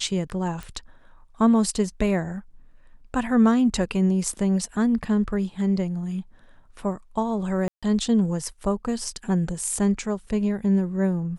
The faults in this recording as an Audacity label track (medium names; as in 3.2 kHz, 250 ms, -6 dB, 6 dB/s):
0.630000	0.630000	pop
7.680000	7.830000	dropout 146 ms